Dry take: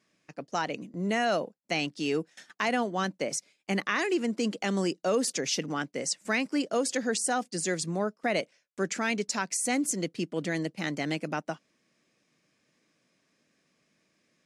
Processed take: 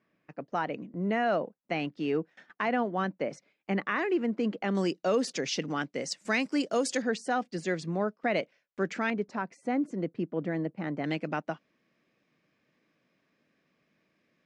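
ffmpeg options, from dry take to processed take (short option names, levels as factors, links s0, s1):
-af "asetnsamples=n=441:p=0,asendcmd='4.75 lowpass f 4700;6.12 lowpass f 7900;7.02 lowpass f 3000;9.1 lowpass f 1300;11.04 lowpass f 3100',lowpass=2000"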